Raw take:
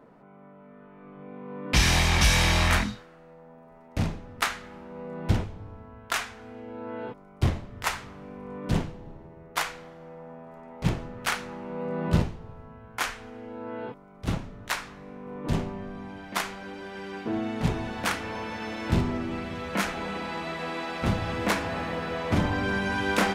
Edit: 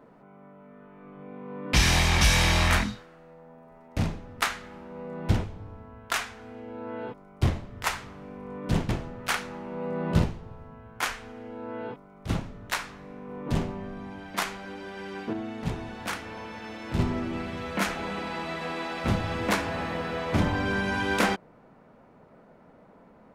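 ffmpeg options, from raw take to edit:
ffmpeg -i in.wav -filter_complex "[0:a]asplit=4[link_01][link_02][link_03][link_04];[link_01]atrim=end=8.892[link_05];[link_02]atrim=start=10.868:end=17.312[link_06];[link_03]atrim=start=17.308:end=18.972,asetpts=PTS-STARTPTS,volume=-5dB[link_07];[link_04]atrim=start=18.968[link_08];[link_05][link_06]acrossfade=duration=0.004:curve1=hsin:curve2=hsin[link_09];[link_09][link_07]acrossfade=duration=0.004:curve1=hsin:curve2=hsin[link_10];[link_10][link_08]acrossfade=duration=0.004:curve1=hsin:curve2=hsin" out.wav

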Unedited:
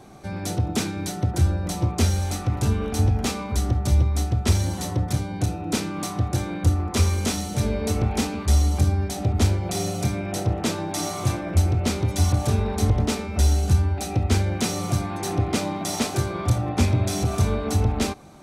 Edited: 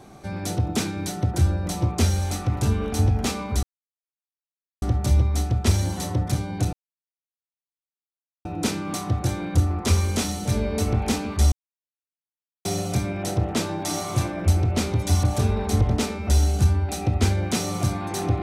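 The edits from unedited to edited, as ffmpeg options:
ffmpeg -i in.wav -filter_complex "[0:a]asplit=5[link_01][link_02][link_03][link_04][link_05];[link_01]atrim=end=3.63,asetpts=PTS-STARTPTS,afade=type=out:start_time=3.626:duration=0.004:curve=hsin,apad=pad_dur=1.19[link_06];[link_02]atrim=start=3.63:end=5.54,asetpts=PTS-STARTPTS,afade=type=in:duration=0.004:curve=hsin,afade=type=out:start_time=1.906:duration=0.004:curve=hsin,apad=pad_dur=1.72[link_07];[link_03]atrim=start=5.54:end=8.61,asetpts=PTS-STARTPTS,afade=type=in:duration=0.004:curve=hsin,afade=type=out:start_time=3.066:duration=0.004:curve=hsin[link_08];[link_04]atrim=start=8.61:end=9.74,asetpts=PTS-STARTPTS,volume=0[link_09];[link_05]atrim=start=9.74,asetpts=PTS-STARTPTS,afade=type=in:duration=0.004:curve=hsin[link_10];[link_06][link_07][link_08][link_09][link_10]concat=n=5:v=0:a=1" out.wav

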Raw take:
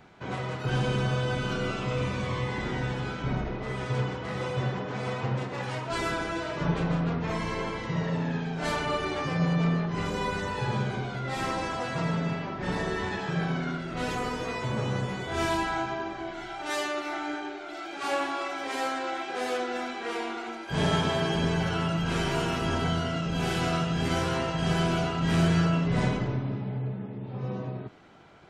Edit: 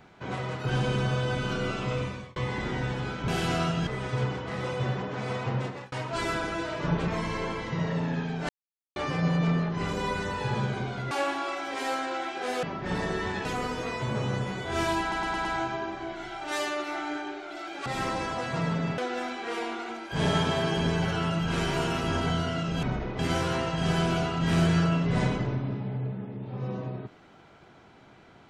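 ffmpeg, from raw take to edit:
ffmpeg -i in.wav -filter_complex "[0:a]asplit=19[link_01][link_02][link_03][link_04][link_05][link_06][link_07][link_08][link_09][link_10][link_11][link_12][link_13][link_14][link_15][link_16][link_17][link_18][link_19];[link_01]atrim=end=2.36,asetpts=PTS-STARTPTS,afade=type=out:start_time=1.93:duration=0.43[link_20];[link_02]atrim=start=2.36:end=3.282,asetpts=PTS-STARTPTS,afade=type=in:duration=0.004:curve=hsin[link_21];[link_03]atrim=start=23.408:end=24.002[link_22];[link_04]atrim=start=3.638:end=5.69,asetpts=PTS-STARTPTS,afade=type=out:start_time=1.802:duration=0.25[link_23];[link_05]atrim=start=5.69:end=6.852,asetpts=PTS-STARTPTS,afade=type=in:duration=0.004:curve=hsin[link_24];[link_06]atrim=start=7.248:end=8.66,asetpts=PTS-STARTPTS,afade=type=out:start_time=1.408:duration=0.004:curve=hsin[link_25];[link_07]atrim=start=8.66:end=9.13,asetpts=PTS-STARTPTS,volume=0[link_26];[link_08]atrim=start=9.13:end=11.282,asetpts=PTS-STARTPTS,afade=type=in:duration=0.004:curve=hsin[link_27];[link_09]atrim=start=18.038:end=19.562[link_28];[link_10]atrim=start=12.398:end=13.222[link_29];[link_11]atrim=start=14.068:end=15.742[link_30];[link_12]atrim=start=15.628:end=15.742[link_31];[link_13]atrim=start=15.628:end=15.742[link_32];[link_14]atrim=start=15.628:end=15.742[link_33];[link_15]atrim=start=15.628:end=18.042[link_34];[link_16]atrim=start=11.278:end=12.402[link_35];[link_17]atrim=start=19.558:end=23.412[link_36];[link_18]atrim=start=3.278:end=3.642[link_37];[link_19]atrim=start=23.998[link_38];[link_20][link_21]concat=n=2:v=0:a=1[link_39];[link_39][link_22]acrossfade=duration=0.004:curve1=hsin:curve2=hsin[link_40];[link_23][link_24]concat=n=2:v=0:a=1[link_41];[link_40][link_41]acrossfade=duration=0.004:curve1=hsin:curve2=hsin[link_42];[link_25][link_26][link_27]concat=n=3:v=0:a=1[link_43];[link_42][link_43]acrossfade=duration=0.004:curve1=hsin:curve2=hsin[link_44];[link_44][link_28]acrossfade=duration=0.004:curve1=hsin:curve2=hsin[link_45];[link_45][link_29]acrossfade=duration=0.004:curve1=hsin:curve2=hsin[link_46];[link_46][link_30]acrossfade=duration=0.004:curve1=hsin:curve2=hsin[link_47];[link_47][link_31]acrossfade=duration=0.004:curve1=hsin:curve2=hsin[link_48];[link_48][link_32]acrossfade=duration=0.004:curve1=hsin:curve2=hsin[link_49];[link_49][link_33]acrossfade=duration=0.004:curve1=hsin:curve2=hsin[link_50];[link_50][link_34]acrossfade=duration=0.004:curve1=hsin:curve2=hsin[link_51];[link_51][link_35]acrossfade=duration=0.004:curve1=hsin:curve2=hsin[link_52];[link_52][link_36]acrossfade=duration=0.004:curve1=hsin:curve2=hsin[link_53];[link_53][link_37]acrossfade=duration=0.004:curve1=hsin:curve2=hsin[link_54];[link_54][link_38]acrossfade=duration=0.004:curve1=hsin:curve2=hsin" out.wav

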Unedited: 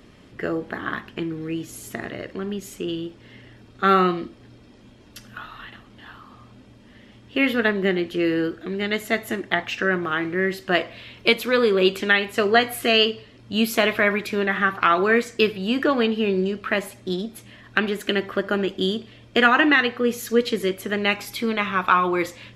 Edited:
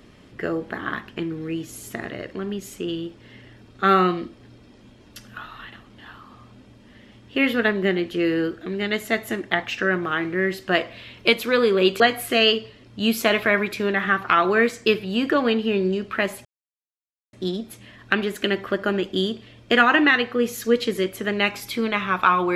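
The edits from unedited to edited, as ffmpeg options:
ffmpeg -i in.wav -filter_complex "[0:a]asplit=3[link_01][link_02][link_03];[link_01]atrim=end=12.002[link_04];[link_02]atrim=start=12.528:end=16.98,asetpts=PTS-STARTPTS,afade=type=out:start_time=4.448:duration=0.004:curve=hsin,apad=pad_dur=0.88[link_05];[link_03]atrim=start=16.98,asetpts=PTS-STARTPTS,afade=type=in:duration=0.004:curve=hsin[link_06];[link_05][link_06]concat=n=2:v=0:a=1[link_07];[link_04][link_07]acrossfade=duration=0.004:curve1=hsin:curve2=hsin" out.wav

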